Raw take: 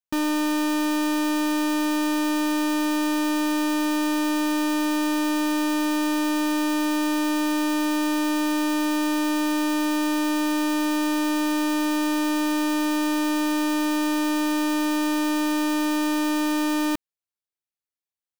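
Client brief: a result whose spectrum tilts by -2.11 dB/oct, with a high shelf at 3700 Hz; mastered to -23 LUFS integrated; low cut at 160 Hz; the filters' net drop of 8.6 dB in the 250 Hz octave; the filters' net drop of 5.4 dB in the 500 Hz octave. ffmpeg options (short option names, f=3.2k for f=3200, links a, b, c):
-af "highpass=160,equalizer=f=250:t=o:g=-9,equalizer=f=500:t=o:g=-4.5,highshelf=f=3.7k:g=-7,volume=6.5dB"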